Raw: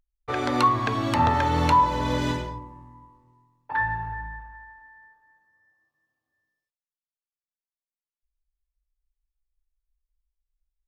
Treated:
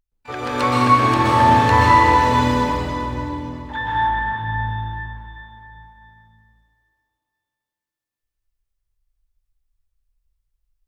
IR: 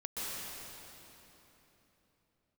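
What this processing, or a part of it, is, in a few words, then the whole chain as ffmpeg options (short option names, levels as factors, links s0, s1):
shimmer-style reverb: -filter_complex "[0:a]asplit=2[s0][s1];[s1]asetrate=88200,aresample=44100,atempo=0.5,volume=0.251[s2];[s0][s2]amix=inputs=2:normalize=0[s3];[1:a]atrim=start_sample=2205[s4];[s3][s4]afir=irnorm=-1:irlink=0,asettb=1/sr,asplit=3[s5][s6][s7];[s5]atrim=end=4.074[s8];[s6]atrim=start=4.07:end=4.67,asetpts=PTS-STARTPTS,afade=t=in:d=0.004:c=qsin,afade=t=out:st=0.596:d=0.004:c=qsin,equalizer=f=6600:w=1.8:g=-12[s9];[s7]atrim=start=4.666[s10];[s8][s9]acrossfade=d=0.004:c1=hsin:c2=qsin[s11];[s11][s10]acrossfade=d=0.004:c1=qsin:c2=hsin,volume=1.41"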